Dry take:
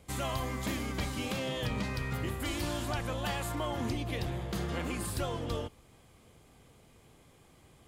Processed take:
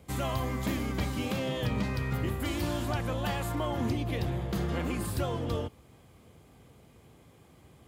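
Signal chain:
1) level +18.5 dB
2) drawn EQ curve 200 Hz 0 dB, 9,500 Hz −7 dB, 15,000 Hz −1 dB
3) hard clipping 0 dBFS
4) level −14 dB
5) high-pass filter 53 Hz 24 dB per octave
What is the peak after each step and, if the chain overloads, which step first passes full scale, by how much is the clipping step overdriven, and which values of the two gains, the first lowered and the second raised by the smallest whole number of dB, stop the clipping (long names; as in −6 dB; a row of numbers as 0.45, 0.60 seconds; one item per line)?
−2.5, −4.0, −4.0, −18.0, −18.5 dBFS
no step passes full scale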